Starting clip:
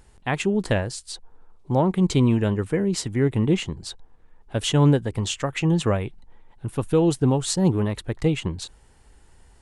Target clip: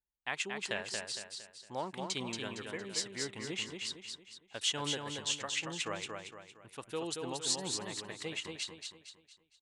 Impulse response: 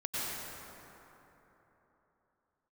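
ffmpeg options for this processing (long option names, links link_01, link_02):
-filter_complex "[0:a]bandpass=frequency=5500:width_type=q:width=0.74:csg=0,aemphasis=mode=reproduction:type=75fm,anlmdn=0.0000398,highshelf=frequency=6800:gain=10.5,asplit=2[link_01][link_02];[link_02]aecho=0:1:230|460|690|920|1150:0.596|0.244|0.1|0.0411|0.0168[link_03];[link_01][link_03]amix=inputs=2:normalize=0"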